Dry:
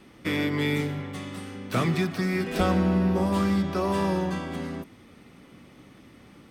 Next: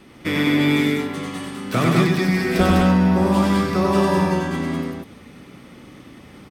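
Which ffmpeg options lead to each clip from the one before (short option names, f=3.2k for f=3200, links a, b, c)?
-af "aecho=1:1:96.21|201.2:0.794|0.794,volume=4.5dB"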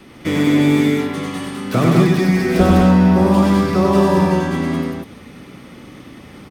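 -filter_complex "[0:a]bandreject=f=7.7k:w=17,acrossover=split=550|940[a][b][c];[c]asoftclip=type=tanh:threshold=-30dB[d];[a][b][d]amix=inputs=3:normalize=0,volume=4.5dB"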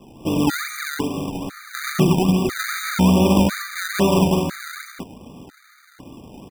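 -af "acrusher=samples=27:mix=1:aa=0.000001:lfo=1:lforange=27:lforate=2.4,afftfilt=real='re*gt(sin(2*PI*1*pts/sr)*(1-2*mod(floor(b*sr/1024/1200),2)),0)':imag='im*gt(sin(2*PI*1*pts/sr)*(1-2*mod(floor(b*sr/1024/1200),2)),0)':win_size=1024:overlap=0.75,volume=-2dB"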